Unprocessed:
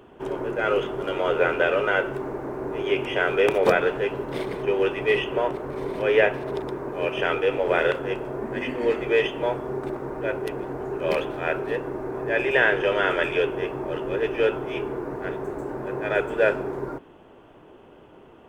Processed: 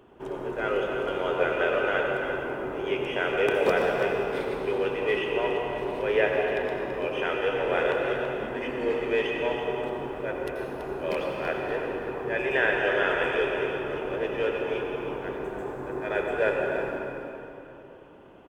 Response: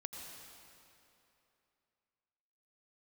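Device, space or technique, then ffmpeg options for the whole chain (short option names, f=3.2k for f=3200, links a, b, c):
cave: -filter_complex "[0:a]aecho=1:1:332:0.335[a];[1:a]atrim=start_sample=2205[b];[a][b]afir=irnorm=-1:irlink=0,volume=-1dB"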